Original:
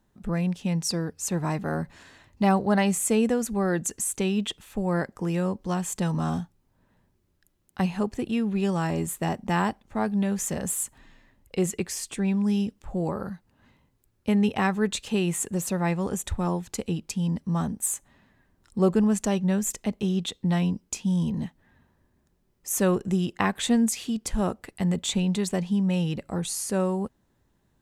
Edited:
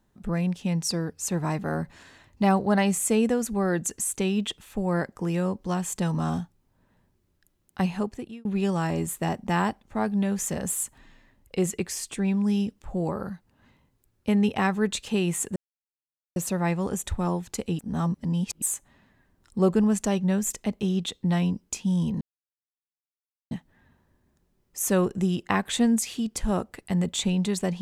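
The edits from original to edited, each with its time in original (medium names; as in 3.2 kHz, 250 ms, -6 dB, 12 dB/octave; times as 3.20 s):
7.94–8.45 s: fade out
15.56 s: insert silence 0.80 s
16.99–17.82 s: reverse
21.41 s: insert silence 1.30 s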